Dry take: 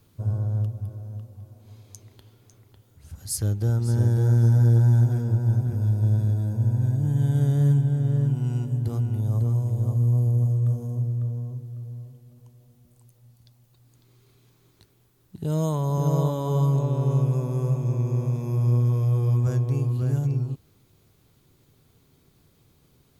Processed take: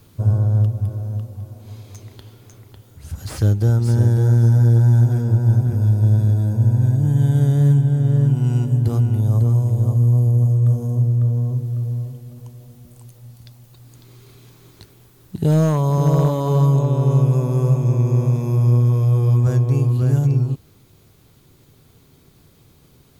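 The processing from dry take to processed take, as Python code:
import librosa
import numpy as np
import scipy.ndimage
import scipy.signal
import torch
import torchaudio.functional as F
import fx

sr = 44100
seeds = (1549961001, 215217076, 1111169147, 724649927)

p1 = fx.rider(x, sr, range_db=10, speed_s=0.5)
p2 = x + F.gain(torch.from_numpy(p1), 1.0).numpy()
y = fx.slew_limit(p2, sr, full_power_hz=110.0)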